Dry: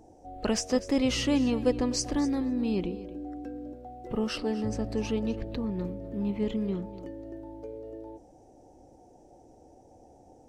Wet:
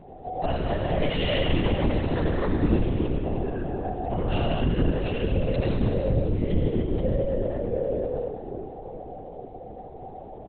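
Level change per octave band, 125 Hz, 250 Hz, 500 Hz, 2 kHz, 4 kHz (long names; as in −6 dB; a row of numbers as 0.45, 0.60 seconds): +12.5, +0.5, +6.0, +6.0, +2.0 decibels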